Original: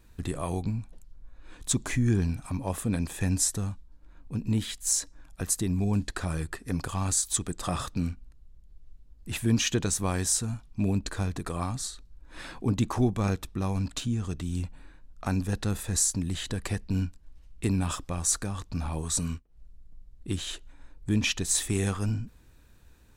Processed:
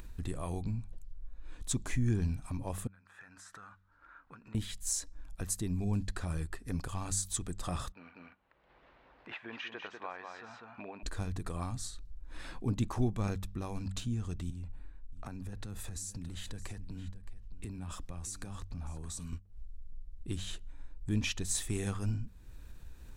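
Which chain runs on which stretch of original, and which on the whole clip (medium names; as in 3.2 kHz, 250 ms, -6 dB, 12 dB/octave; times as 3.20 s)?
2.87–4.55 s: compression, threshold -31 dBFS + band-pass filter 1.4 kHz, Q 5.5
7.92–11.03 s: Butterworth band-pass 1.3 kHz, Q 0.69 + distance through air 170 m + delay 194 ms -7 dB
14.50–19.33 s: compression, threshold -34 dBFS + delay 620 ms -13 dB + three bands expanded up and down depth 40%
whole clip: bass shelf 69 Hz +11.5 dB; de-hum 95.93 Hz, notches 2; upward compressor, threshold -28 dBFS; trim -8 dB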